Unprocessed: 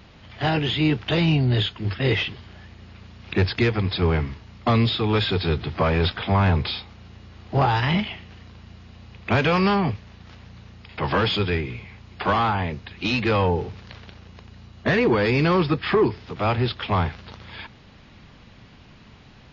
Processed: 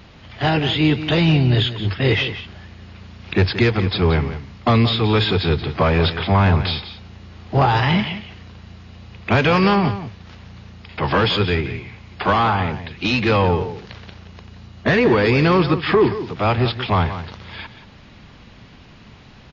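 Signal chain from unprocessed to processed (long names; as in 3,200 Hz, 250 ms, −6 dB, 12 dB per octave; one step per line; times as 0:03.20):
single-tap delay 177 ms −12 dB
level +4 dB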